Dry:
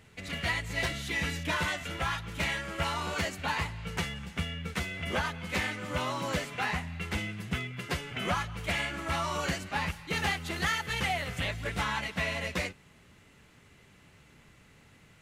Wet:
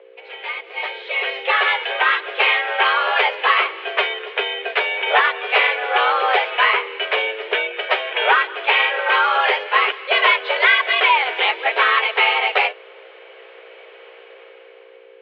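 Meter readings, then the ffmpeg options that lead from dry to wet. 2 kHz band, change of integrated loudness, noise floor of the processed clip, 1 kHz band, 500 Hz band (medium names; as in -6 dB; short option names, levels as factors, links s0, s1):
+16.0 dB, +15.0 dB, -44 dBFS, +16.5 dB, +14.5 dB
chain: -af "dynaudnorm=f=380:g=7:m=5.62,aeval=exprs='val(0)+0.0178*(sin(2*PI*60*n/s)+sin(2*PI*2*60*n/s)/2+sin(2*PI*3*60*n/s)/3+sin(2*PI*4*60*n/s)/4+sin(2*PI*5*60*n/s)/5)':c=same,highpass=f=230:t=q:w=0.5412,highpass=f=230:t=q:w=1.307,lowpass=f=3100:t=q:w=0.5176,lowpass=f=3100:t=q:w=0.7071,lowpass=f=3100:t=q:w=1.932,afreqshift=230,volume=1.33"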